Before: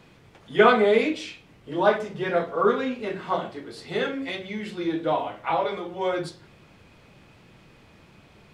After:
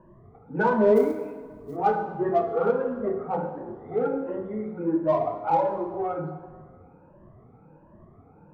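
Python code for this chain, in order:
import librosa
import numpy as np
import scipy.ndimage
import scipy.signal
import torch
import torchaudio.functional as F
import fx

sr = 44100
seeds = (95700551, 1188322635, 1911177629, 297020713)

p1 = fx.spec_ripple(x, sr, per_octave=1.3, drift_hz=1.4, depth_db=24)
p2 = scipy.signal.sosfilt(scipy.signal.butter(4, 1100.0, 'lowpass', fs=sr, output='sos'), p1)
p3 = 10.0 ** (-21.0 / 20.0) * np.tanh(p2 / 10.0 ** (-21.0 / 20.0))
p4 = p2 + (p3 * librosa.db_to_amplitude(-8.0))
p5 = fx.quant_float(p4, sr, bits=4, at=(0.95, 1.75), fade=0.02)
p6 = fx.rev_plate(p5, sr, seeds[0], rt60_s=1.6, hf_ratio=0.75, predelay_ms=0, drr_db=6.5)
y = p6 * librosa.db_to_amplitude(-7.0)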